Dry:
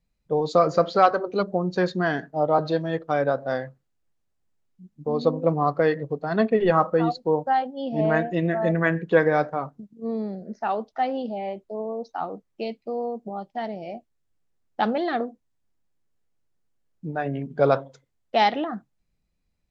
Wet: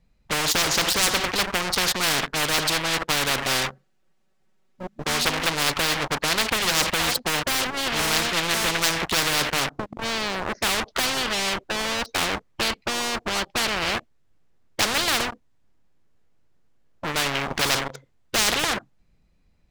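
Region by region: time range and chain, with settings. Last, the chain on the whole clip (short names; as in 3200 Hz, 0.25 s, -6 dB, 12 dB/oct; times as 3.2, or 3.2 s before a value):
3.46–5.27 low shelf 120 Hz -9.5 dB + notch 1000 Hz, Q 14 + comb 5.3 ms, depth 79%
whole clip: LPF 3600 Hz 6 dB/oct; sample leveller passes 3; spectral compressor 10:1; gain +2.5 dB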